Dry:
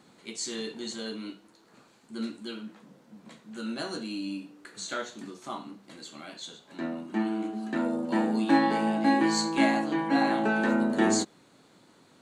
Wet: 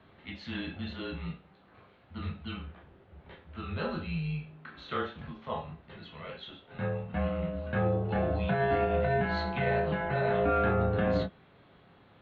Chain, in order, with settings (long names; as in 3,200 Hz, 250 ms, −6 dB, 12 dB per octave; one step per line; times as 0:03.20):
single-sideband voice off tune −140 Hz 230–3,500 Hz
brickwall limiter −21.5 dBFS, peak gain reduction 9.5 dB
convolution reverb, pre-delay 13 ms, DRR 2.5 dB